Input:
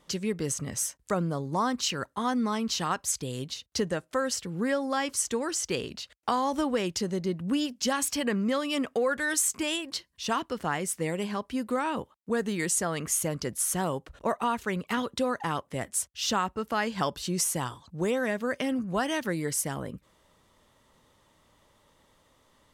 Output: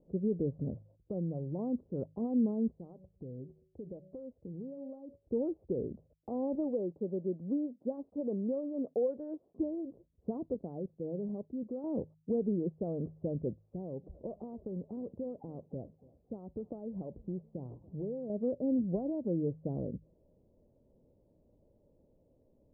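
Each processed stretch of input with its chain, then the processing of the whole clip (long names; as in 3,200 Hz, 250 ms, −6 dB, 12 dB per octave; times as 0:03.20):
0:00.82–0:01.59: comb filter 5.7 ms, depth 38% + downward compressor 2 to 1, threshold −37 dBFS
0:02.71–0:05.27: hum removal 187.7 Hz, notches 3 + downward compressor, threshold −40 dBFS
0:06.55–0:09.59: one scale factor per block 5 bits + high-pass filter 430 Hz 6 dB per octave
0:10.54–0:11.84: band-pass filter 100–3,100 Hz + output level in coarse steps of 12 dB
0:13.51–0:18.30: downward compressor, threshold −34 dBFS + feedback echo with a swinging delay time 286 ms, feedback 53%, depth 98 cents, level −21.5 dB
whole clip: brickwall limiter −21.5 dBFS; Butterworth low-pass 600 Hz 36 dB per octave; hum removal 52.45 Hz, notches 3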